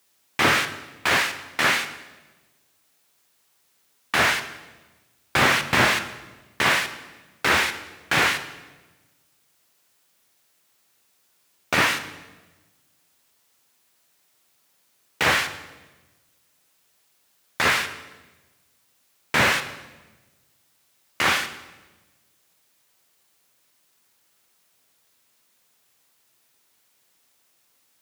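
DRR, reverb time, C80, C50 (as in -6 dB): 9.5 dB, 1.2 s, 14.0 dB, 12.0 dB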